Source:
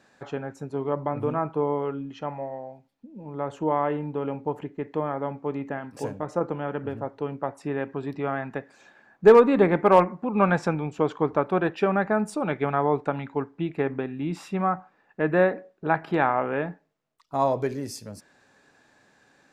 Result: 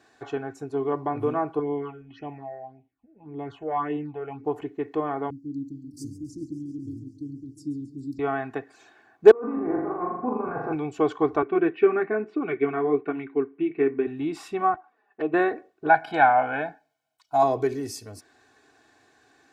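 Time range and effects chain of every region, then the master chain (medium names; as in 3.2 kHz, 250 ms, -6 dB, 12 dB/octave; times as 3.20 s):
1.59–4.44 s: level-controlled noise filter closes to 1.7 kHz, open at -23 dBFS + peaking EQ 500 Hz -6 dB 0.34 oct + phase shifter stages 6, 1.8 Hz, lowest notch 250–1400 Hz
5.30–8.19 s: Chebyshev band-stop 310–4500 Hz, order 5 + modulated delay 137 ms, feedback 76%, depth 100 cents, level -14.5 dB
9.31–10.73 s: compressor with a negative ratio -26 dBFS + four-pole ladder low-pass 1.5 kHz, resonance 25% + flutter echo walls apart 6.9 m, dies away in 0.82 s
11.42–14.07 s: flange 1.1 Hz, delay 1.9 ms, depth 7.9 ms, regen -54% + cabinet simulation 160–2900 Hz, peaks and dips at 170 Hz +7 dB, 270 Hz +5 dB, 390 Hz +8 dB, 570 Hz -5 dB, 860 Hz -10 dB, 2.3 kHz +6 dB
14.74–15.34 s: high-pass 340 Hz 6 dB/octave + treble shelf 3 kHz -9.5 dB + touch-sensitive flanger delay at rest 5.7 ms, full sweep at -27.5 dBFS
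15.89–17.43 s: bass shelf 140 Hz -11 dB + comb 1.3 ms, depth 91%
whole clip: high-pass 57 Hz; comb 2.7 ms, depth 80%; trim -1 dB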